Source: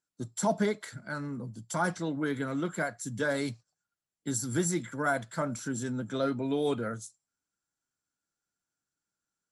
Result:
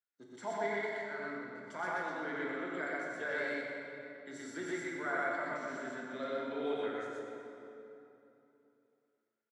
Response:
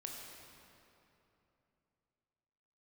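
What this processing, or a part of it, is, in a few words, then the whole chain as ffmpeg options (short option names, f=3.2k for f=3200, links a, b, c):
station announcement: -filter_complex "[0:a]highpass=380,lowpass=3.6k,equalizer=f=2k:t=o:w=0.49:g=10,aecho=1:1:87.46|122.4:0.501|1[a];[1:a]atrim=start_sample=2205[b];[a][b]afir=irnorm=-1:irlink=0,volume=-6dB"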